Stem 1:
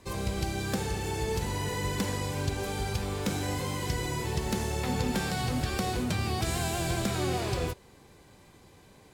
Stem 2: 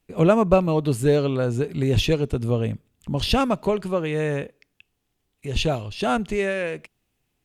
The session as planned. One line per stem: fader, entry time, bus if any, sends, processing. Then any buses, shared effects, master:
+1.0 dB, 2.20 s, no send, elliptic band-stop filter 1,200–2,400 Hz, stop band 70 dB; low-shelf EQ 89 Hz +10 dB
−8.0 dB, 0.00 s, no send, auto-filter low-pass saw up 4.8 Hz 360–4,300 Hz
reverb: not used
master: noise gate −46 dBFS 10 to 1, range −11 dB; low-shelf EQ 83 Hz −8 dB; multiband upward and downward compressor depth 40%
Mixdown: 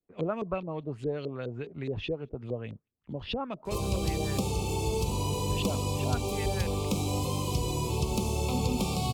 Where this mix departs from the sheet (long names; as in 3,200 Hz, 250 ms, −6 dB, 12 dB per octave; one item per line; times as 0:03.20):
stem 1: entry 2.20 s → 3.65 s
stem 2 −8.0 dB → −16.5 dB